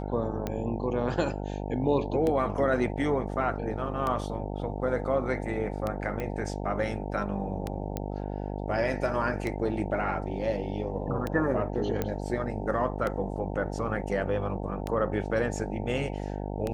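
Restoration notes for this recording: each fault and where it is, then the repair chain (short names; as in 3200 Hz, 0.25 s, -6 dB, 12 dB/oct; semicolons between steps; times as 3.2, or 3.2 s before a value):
buzz 50 Hz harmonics 18 -34 dBFS
tick 33 1/3 rpm -17 dBFS
6.2 pop -21 dBFS
7.97 pop -18 dBFS
12.02 pop -15 dBFS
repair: de-click; de-hum 50 Hz, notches 18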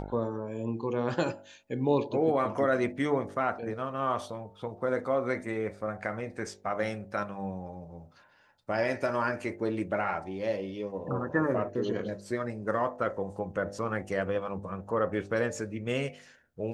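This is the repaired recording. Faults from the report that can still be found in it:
none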